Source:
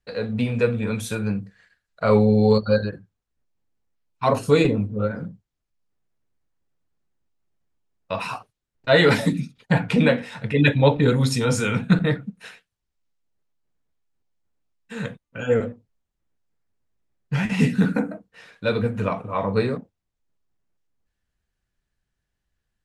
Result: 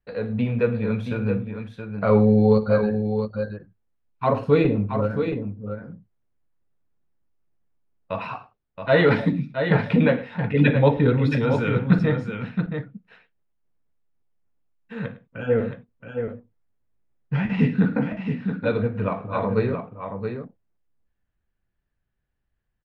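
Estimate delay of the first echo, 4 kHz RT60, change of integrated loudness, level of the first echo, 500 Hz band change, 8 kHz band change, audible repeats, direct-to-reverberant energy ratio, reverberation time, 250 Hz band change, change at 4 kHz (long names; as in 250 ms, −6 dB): 56 ms, no reverb audible, −1.0 dB, −17.5 dB, 0.0 dB, below −25 dB, 3, no reverb audible, no reverb audible, +0.5 dB, −8.5 dB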